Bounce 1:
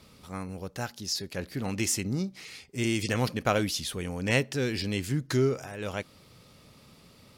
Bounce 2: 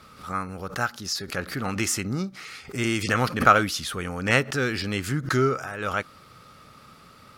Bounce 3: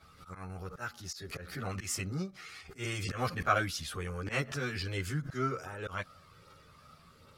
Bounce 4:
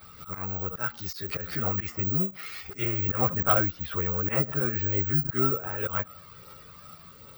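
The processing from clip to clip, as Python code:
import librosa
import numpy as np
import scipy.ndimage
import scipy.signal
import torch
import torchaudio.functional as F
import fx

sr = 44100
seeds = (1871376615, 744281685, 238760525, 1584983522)

y1 = fx.peak_eq(x, sr, hz=1300.0, db=15.0, octaves=0.81)
y1 = fx.notch(y1, sr, hz=1000.0, q=12.0)
y1 = fx.pre_swell(y1, sr, db_per_s=140.0)
y1 = F.gain(torch.from_numpy(y1), 1.5).numpy()
y2 = fx.auto_swell(y1, sr, attack_ms=111.0)
y2 = fx.chorus_voices(y2, sr, voices=6, hz=0.32, base_ms=12, depth_ms=1.5, mix_pct=60)
y2 = F.gain(torch.from_numpy(y2), -6.0).numpy()
y3 = fx.env_lowpass_down(y2, sr, base_hz=1200.0, full_db=-32.0)
y3 = fx.fold_sine(y3, sr, drive_db=3, ceiling_db=-16.5)
y3 = (np.kron(y3[::2], np.eye(2)[0]) * 2)[:len(y3)]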